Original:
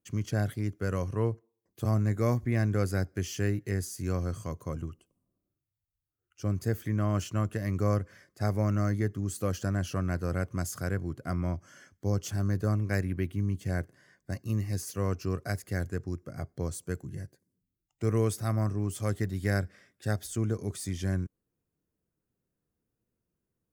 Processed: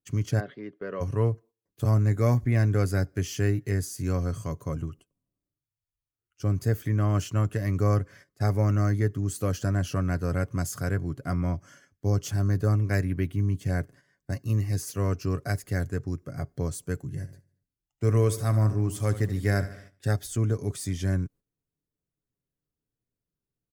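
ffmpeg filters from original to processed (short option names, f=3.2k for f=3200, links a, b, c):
-filter_complex "[0:a]asplit=3[a][b][c];[a]afade=t=out:st=0.39:d=0.02[d];[b]highpass=f=230:w=0.5412,highpass=f=230:w=1.3066,equalizer=f=280:t=q:w=4:g=-10,equalizer=f=800:t=q:w=4:g=-8,equalizer=f=1.4k:t=q:w=4:g=-6,equalizer=f=2.4k:t=q:w=4:g=-8,lowpass=f=3.1k:w=0.5412,lowpass=f=3.1k:w=1.3066,afade=t=in:st=0.39:d=0.02,afade=t=out:st=1:d=0.02[e];[c]afade=t=in:st=1:d=0.02[f];[d][e][f]amix=inputs=3:normalize=0,asettb=1/sr,asplit=3[g][h][i];[g]atrim=end=17.144[j];[h]atrim=start=17.14:end=20.09,asetpts=PTS-STARTPTS,afade=t=in:d=0.004:c=qsin,afade=t=out:st=2.946:d=0.004:c=qsin,aecho=1:1:74|148|222|296|370:0.2|0.106|0.056|0.0297|0.0157,atrim=end_sample=130095[k];[i]atrim=start=20.086[l];[j][k]acrossfade=d=0.004:c1=hsin:c2=qsin[m];[m][l]acrossfade=d=0.004:c1=qsin:c2=hsin,agate=range=-10dB:threshold=-52dB:ratio=16:detection=peak,lowshelf=f=83:g=7.5,aecho=1:1:7.1:0.32,volume=2dB"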